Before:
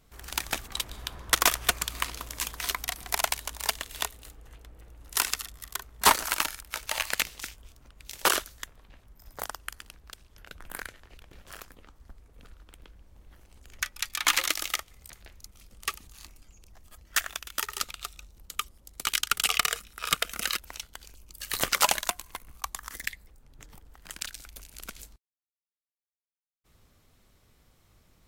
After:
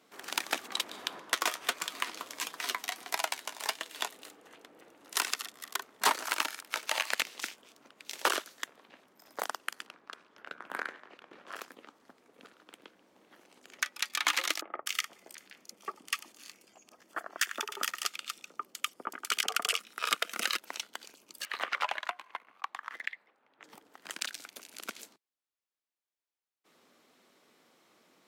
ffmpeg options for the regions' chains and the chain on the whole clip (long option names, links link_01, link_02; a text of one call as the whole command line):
ffmpeg -i in.wav -filter_complex "[0:a]asettb=1/sr,asplit=3[link_01][link_02][link_03];[link_01]atrim=end=1.204[link_04];[link_02]atrim=start=1.2:end=4.08,asetpts=PTS-STARTPTS,afade=type=in:duration=0.004:curve=qsin,afade=type=out:start_time=2.876:duration=0.004:curve=qsin,flanger=delay=6:depth=3.7:regen=63:speed=1.5:shape=sinusoidal,aecho=1:1:382:0.075,atrim=end_sample=127008[link_05];[link_03]atrim=start=4.076[link_06];[link_04][link_05]acrossfade=duration=0.004:curve1=hsin:curve2=qsin[link_07];[link_07][link_06]acrossfade=duration=0.004:curve1=qsin:curve2=hsin,asettb=1/sr,asplit=3[link_08][link_09][link_10];[link_08]atrim=end=9.864[link_11];[link_09]atrim=start=9.86:end=11.56,asetpts=PTS-STARTPTS,afade=type=in:duration=0.004:curve=qsin,afade=type=out:start_time=1.696:duration=0.004:curve=qsin,lowpass=frequency=2500:poles=1,equalizer=frequency=1200:width_type=o:width=0.88:gain=5,bandreject=frequency=77:width_type=h:width=4,bandreject=frequency=154:width_type=h:width=4,bandreject=frequency=231:width_type=h:width=4,bandreject=frequency=308:width_type=h:width=4,bandreject=frequency=385:width_type=h:width=4,bandreject=frequency=462:width_type=h:width=4,bandreject=frequency=539:width_type=h:width=4,bandreject=frequency=616:width_type=h:width=4,bandreject=frequency=693:width_type=h:width=4,bandreject=frequency=770:width_type=h:width=4,bandreject=frequency=847:width_type=h:width=4,bandreject=frequency=924:width_type=h:width=4,bandreject=frequency=1001:width_type=h:width=4,bandreject=frequency=1078:width_type=h:width=4,bandreject=frequency=1155:width_type=h:width=4,bandreject=frequency=1232:width_type=h:width=4,bandreject=frequency=1309:width_type=h:width=4,bandreject=frequency=1386:width_type=h:width=4,bandreject=frequency=1463:width_type=h:width=4,bandreject=frequency=1540:width_type=h:width=4,bandreject=frequency=1617:width_type=h:width=4,bandreject=frequency=1694:width_type=h:width=4,bandreject=frequency=1771:width_type=h:width=4,bandreject=frequency=1848:width_type=h:width=4,bandreject=frequency=1925:width_type=h:width=4,bandreject=frequency=2002:width_type=h:width=4,bandreject=frequency=2079:width_type=h:width=4,bandreject=frequency=2156:width_type=h:width=4,bandreject=frequency=2233:width_type=h:width=4,bandreject=frequency=2310:width_type=h:width=4,bandreject=frequency=2387:width_type=h:width=4,bandreject=frequency=2464:width_type=h:width=4[link_12];[link_10]atrim=start=11.556[link_13];[link_11][link_12]acrossfade=duration=0.004:curve1=hsin:curve2=qsin[link_14];[link_14][link_13]acrossfade=duration=0.004:curve1=qsin:curve2=hsin,asettb=1/sr,asplit=3[link_15][link_16][link_17];[link_15]atrim=end=14.614[link_18];[link_16]atrim=start=14.61:end=19.79,asetpts=PTS-STARTPTS,afade=type=in:duration=0.004:curve=qsin,afade=type=out:start_time=5.176:duration=0.004:curve=qsin,bandreject=frequency=3900:width=9.4,acrossover=split=1200[link_19][link_20];[link_20]adelay=250[link_21];[link_19][link_21]amix=inputs=2:normalize=0,atrim=end_sample=228438[link_22];[link_17]atrim=start=19.786[link_23];[link_18][link_22]acrossfade=duration=0.004:curve1=hsin:curve2=qsin[link_24];[link_24][link_23]acrossfade=duration=0.004:curve1=qsin:curve2=hsin,asettb=1/sr,asplit=3[link_25][link_26][link_27];[link_25]atrim=end=21.454[link_28];[link_26]atrim=start=21.45:end=23.64,asetpts=PTS-STARTPTS,afade=type=in:duration=0.004:curve=qsin,afade=type=out:start_time=2.186:duration=0.004:curve=qsin,acrossover=split=590 3100:gain=0.224 1 0.0708[link_29][link_30][link_31];[link_29][link_30][link_31]amix=inputs=3:normalize=0,acompressor=threshold=-36dB:ratio=1.5:attack=3.2:release=140:knee=1:detection=peak[link_32];[link_27]atrim=start=23.636[link_33];[link_28][link_32]acrossfade=duration=0.004:curve1=hsin:curve2=qsin[link_34];[link_34][link_33]acrossfade=duration=0.004:curve1=qsin:curve2=hsin,highpass=frequency=240:width=0.5412,highpass=frequency=240:width=1.3066,highshelf=frequency=8000:gain=-11,acompressor=threshold=-31dB:ratio=2.5,volume=3.5dB" out.wav